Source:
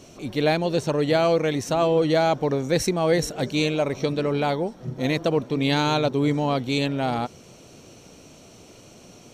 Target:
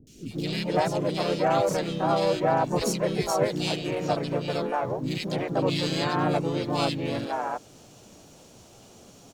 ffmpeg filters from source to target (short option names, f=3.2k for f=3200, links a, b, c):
-filter_complex "[0:a]acrusher=bits=10:mix=0:aa=0.000001,asplit=4[a][b][c][d];[b]asetrate=35002,aresample=44100,atempo=1.25992,volume=-10dB[e];[c]asetrate=52444,aresample=44100,atempo=0.840896,volume=-1dB[f];[d]asetrate=88200,aresample=44100,atempo=0.5,volume=-15dB[g];[a][e][f][g]amix=inputs=4:normalize=0,acrossover=split=340|2100[h][i][j];[j]adelay=70[k];[i]adelay=310[l];[h][l][k]amix=inputs=3:normalize=0,volume=-5dB"